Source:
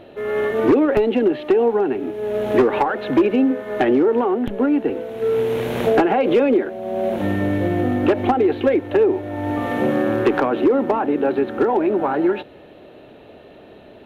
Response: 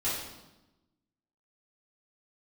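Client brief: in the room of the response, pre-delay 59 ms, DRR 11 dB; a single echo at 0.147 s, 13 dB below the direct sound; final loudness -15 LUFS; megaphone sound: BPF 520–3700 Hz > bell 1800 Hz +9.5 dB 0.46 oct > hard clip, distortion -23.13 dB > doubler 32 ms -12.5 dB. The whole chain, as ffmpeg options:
-filter_complex "[0:a]aecho=1:1:147:0.224,asplit=2[a][b];[1:a]atrim=start_sample=2205,adelay=59[c];[b][c]afir=irnorm=-1:irlink=0,volume=-18.5dB[d];[a][d]amix=inputs=2:normalize=0,highpass=520,lowpass=3.7k,equalizer=f=1.8k:t=o:w=0.46:g=9.5,asoftclip=type=hard:threshold=-11.5dB,asplit=2[e][f];[f]adelay=32,volume=-12.5dB[g];[e][g]amix=inputs=2:normalize=0,volume=7dB"

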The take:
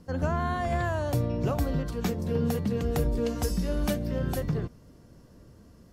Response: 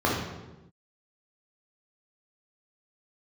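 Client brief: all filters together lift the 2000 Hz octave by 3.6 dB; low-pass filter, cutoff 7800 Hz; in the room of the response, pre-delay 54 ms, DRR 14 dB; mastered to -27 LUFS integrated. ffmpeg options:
-filter_complex "[0:a]lowpass=7.8k,equalizer=f=2k:t=o:g=4.5,asplit=2[a][b];[1:a]atrim=start_sample=2205,adelay=54[c];[b][c]afir=irnorm=-1:irlink=0,volume=-29.5dB[d];[a][d]amix=inputs=2:normalize=0,volume=1dB"

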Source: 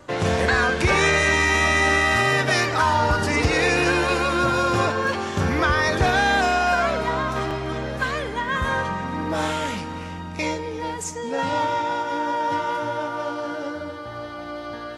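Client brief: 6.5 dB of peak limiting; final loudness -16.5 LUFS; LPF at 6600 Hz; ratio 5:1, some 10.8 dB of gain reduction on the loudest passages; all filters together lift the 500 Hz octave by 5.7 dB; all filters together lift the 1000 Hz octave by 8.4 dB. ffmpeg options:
-af "lowpass=6.6k,equalizer=f=500:t=o:g=4.5,equalizer=f=1k:t=o:g=9,acompressor=threshold=-20dB:ratio=5,volume=8dB,alimiter=limit=-8dB:level=0:latency=1"

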